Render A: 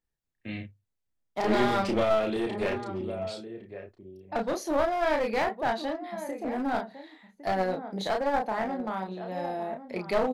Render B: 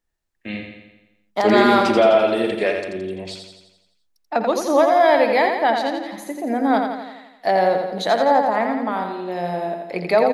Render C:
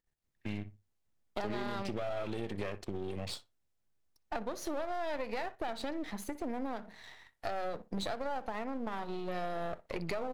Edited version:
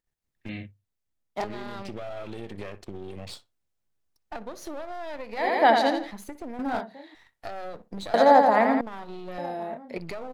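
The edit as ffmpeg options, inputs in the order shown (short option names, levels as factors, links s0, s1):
-filter_complex "[0:a]asplit=3[s0][s1][s2];[1:a]asplit=2[s3][s4];[2:a]asplit=6[s5][s6][s7][s8][s9][s10];[s5]atrim=end=0.492[s11];[s0]atrim=start=0.488:end=1.442[s12];[s6]atrim=start=1.438:end=5.6[s13];[s3]atrim=start=5.36:end=6.14[s14];[s7]atrim=start=5.9:end=6.592[s15];[s1]atrim=start=6.588:end=7.152[s16];[s8]atrim=start=7.148:end=8.142[s17];[s4]atrim=start=8.138:end=8.812[s18];[s9]atrim=start=8.808:end=9.382[s19];[s2]atrim=start=9.378:end=9.982[s20];[s10]atrim=start=9.978[s21];[s11][s12]acrossfade=d=0.004:c1=hsin:c2=hsin[s22];[s22][s13]acrossfade=d=0.004:c1=hsin:c2=hsin[s23];[s23][s14]acrossfade=d=0.24:c1=tri:c2=tri[s24];[s24][s15]acrossfade=d=0.24:c1=tri:c2=tri[s25];[s25][s16]acrossfade=d=0.004:c1=hsin:c2=hsin[s26];[s26][s17]acrossfade=d=0.004:c1=hsin:c2=hsin[s27];[s27][s18]acrossfade=d=0.004:c1=hsin:c2=hsin[s28];[s28][s19]acrossfade=d=0.004:c1=hsin:c2=hsin[s29];[s29][s20]acrossfade=d=0.004:c1=hsin:c2=hsin[s30];[s30][s21]acrossfade=d=0.004:c1=hsin:c2=hsin"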